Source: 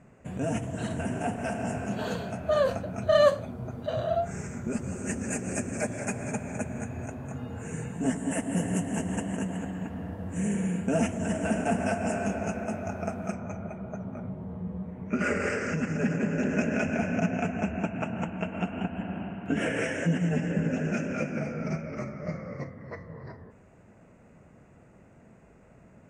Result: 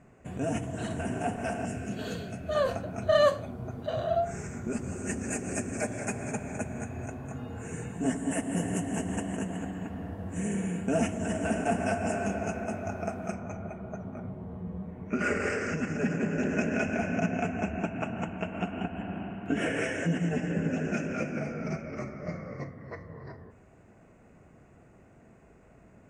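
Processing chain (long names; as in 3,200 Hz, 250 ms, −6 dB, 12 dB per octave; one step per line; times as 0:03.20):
0:01.65–0:02.55: parametric band 910 Hz −11.5 dB 1.1 octaves
on a send: convolution reverb RT60 0.50 s, pre-delay 3 ms, DRR 12.5 dB
on the sum: level −1 dB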